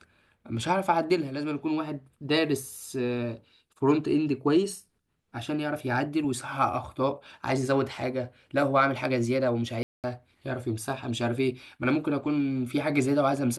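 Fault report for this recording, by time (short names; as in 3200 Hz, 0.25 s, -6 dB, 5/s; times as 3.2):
9.83–10.04 gap 0.208 s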